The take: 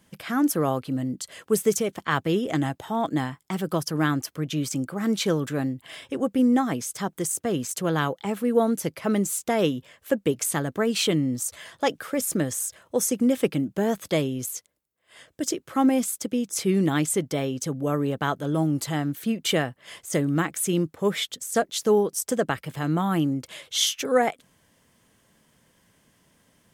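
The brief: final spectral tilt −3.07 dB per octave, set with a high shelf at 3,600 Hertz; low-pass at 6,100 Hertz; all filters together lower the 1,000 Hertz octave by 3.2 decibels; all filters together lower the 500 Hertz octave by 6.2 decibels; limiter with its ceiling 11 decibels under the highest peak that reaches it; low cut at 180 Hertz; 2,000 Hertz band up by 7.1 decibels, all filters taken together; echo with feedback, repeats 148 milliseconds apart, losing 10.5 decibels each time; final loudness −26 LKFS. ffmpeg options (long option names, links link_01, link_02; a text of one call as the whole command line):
ffmpeg -i in.wav -af "highpass=180,lowpass=6100,equalizer=frequency=500:width_type=o:gain=-7,equalizer=frequency=1000:width_type=o:gain=-5,equalizer=frequency=2000:width_type=o:gain=8.5,highshelf=frequency=3600:gain=9,alimiter=limit=-16dB:level=0:latency=1,aecho=1:1:148|296|444:0.299|0.0896|0.0269,volume=2dB" out.wav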